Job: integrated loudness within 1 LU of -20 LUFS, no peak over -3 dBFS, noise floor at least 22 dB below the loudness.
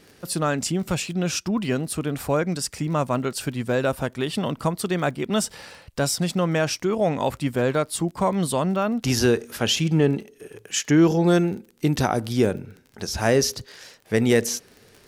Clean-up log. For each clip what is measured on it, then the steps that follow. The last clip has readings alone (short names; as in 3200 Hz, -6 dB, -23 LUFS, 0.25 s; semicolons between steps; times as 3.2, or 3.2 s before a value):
ticks 26/s; loudness -23.5 LUFS; peak -5.5 dBFS; loudness target -20.0 LUFS
-> de-click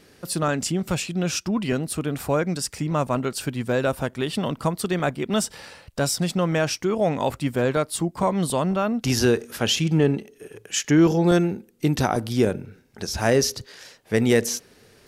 ticks 0.066/s; loudness -23.5 LUFS; peak -5.5 dBFS; loudness target -20.0 LUFS
-> gain +3.5 dB; limiter -3 dBFS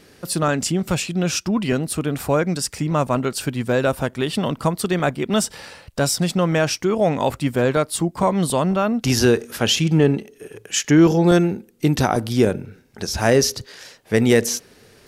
loudness -20.0 LUFS; peak -3.0 dBFS; noise floor -51 dBFS